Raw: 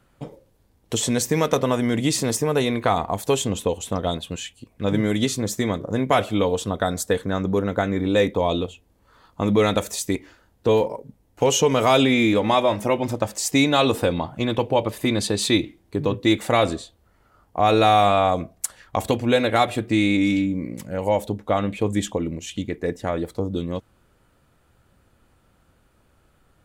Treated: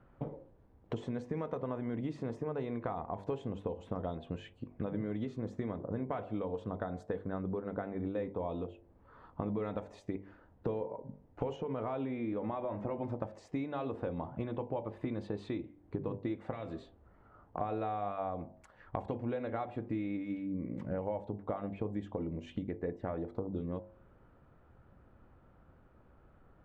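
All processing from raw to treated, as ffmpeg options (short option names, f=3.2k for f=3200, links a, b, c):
-filter_complex "[0:a]asettb=1/sr,asplit=3[a][b][c];[a]atrim=end=11.564[d];[b]atrim=start=11.56:end=13.01,asetpts=PTS-STARTPTS,afade=t=in:d=0.004:c=qsin,afade=t=out:st=1.446:d=0.004:c=qsin,aemphasis=mode=reproduction:type=50fm,acompressor=threshold=-20dB:ratio=2.5:attack=3.2:release=140:knee=1:detection=peak[e];[c]atrim=start=13.006[f];[d][e]acrossfade=d=0.004:c1=hsin:c2=qsin[g];[g][f]acrossfade=d=0.004:c1=qsin:c2=hsin,asettb=1/sr,asplit=3[h][i][j];[h]atrim=end=16.514[k];[i]atrim=start=16.51:end=17.61,asetpts=PTS-STARTPTS,afade=t=in:d=0.004:c=qsin,afade=t=out:st=1.096:d=0.004:c=qsin,acrossover=split=320|1900[l][m][n];[l]acompressor=threshold=-37dB:ratio=4[o];[m]acompressor=threshold=-33dB:ratio=4[p];[n]acompressor=threshold=-33dB:ratio=4[q];[o][p][q]amix=inputs=3:normalize=0,asplit=2[r][s];[s]adelay=18,volume=-14dB[t];[r][t]amix=inputs=2:normalize=0,atrim=end_sample=48510[u];[j]atrim=start=17.606[v];[k][u]acrossfade=d=0.004:c1=hsin:c2=qsin[w];[w][v]acrossfade=d=0.004:c1=qsin:c2=hsin,acompressor=threshold=-33dB:ratio=8,lowpass=1.3k,bandreject=f=49.1:t=h:w=4,bandreject=f=98.2:t=h:w=4,bandreject=f=147.3:t=h:w=4,bandreject=f=196.4:t=h:w=4,bandreject=f=245.5:t=h:w=4,bandreject=f=294.6:t=h:w=4,bandreject=f=343.7:t=h:w=4,bandreject=f=392.8:t=h:w=4,bandreject=f=441.9:t=h:w=4,bandreject=f=491:t=h:w=4,bandreject=f=540.1:t=h:w=4,bandreject=f=589.2:t=h:w=4,bandreject=f=638.3:t=h:w=4,bandreject=f=687.4:t=h:w=4,bandreject=f=736.5:t=h:w=4,bandreject=f=785.6:t=h:w=4,bandreject=f=834.7:t=h:w=4,bandreject=f=883.8:t=h:w=4,bandreject=f=932.9:t=h:w=4,bandreject=f=982:t=h:w=4,bandreject=f=1.0311k:t=h:w=4"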